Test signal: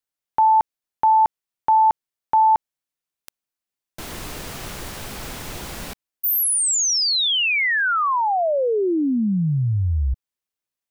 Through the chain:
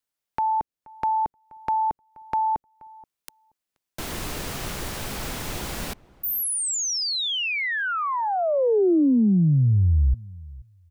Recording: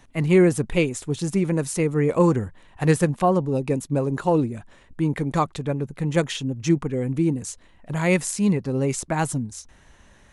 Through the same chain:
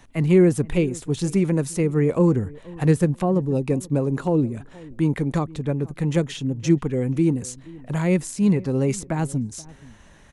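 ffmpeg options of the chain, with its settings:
ffmpeg -i in.wav -filter_complex "[0:a]acrossover=split=470[link_01][link_02];[link_02]acompressor=threshold=-28dB:ratio=4:attack=1.2:release=707:knee=2.83:detection=peak[link_03];[link_01][link_03]amix=inputs=2:normalize=0,asplit=2[link_04][link_05];[link_05]adelay=478,lowpass=frequency=1100:poles=1,volume=-21dB,asplit=2[link_06][link_07];[link_07]adelay=478,lowpass=frequency=1100:poles=1,volume=0.17[link_08];[link_04][link_06][link_08]amix=inputs=3:normalize=0,volume=2dB" out.wav

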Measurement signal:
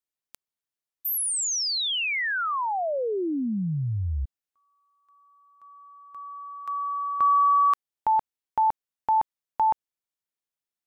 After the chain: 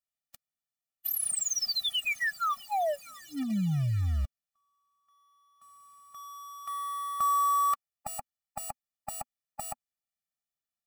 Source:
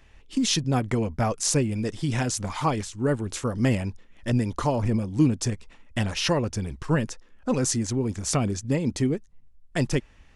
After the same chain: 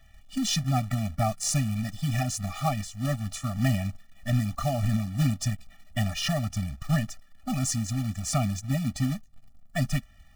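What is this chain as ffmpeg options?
ffmpeg -i in.wav -af "equalizer=frequency=240:width_type=o:width=0.21:gain=-6.5,acrusher=bits=3:mode=log:mix=0:aa=0.000001,afftfilt=real='re*eq(mod(floor(b*sr/1024/280),2),0)':imag='im*eq(mod(floor(b*sr/1024/280),2),0)':win_size=1024:overlap=0.75" out.wav

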